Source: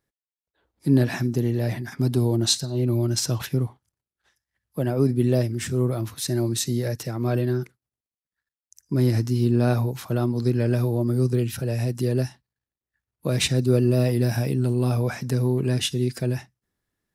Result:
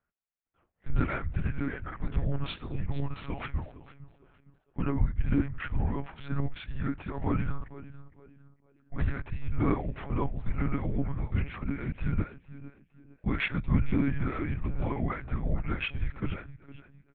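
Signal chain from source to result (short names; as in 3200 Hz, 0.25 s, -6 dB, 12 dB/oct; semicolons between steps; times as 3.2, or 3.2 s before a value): mistuned SSB -320 Hz 300–2900 Hz; frequency-shifting echo 0.458 s, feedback 31%, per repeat +59 Hz, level -16.5 dB; monotone LPC vocoder at 8 kHz 140 Hz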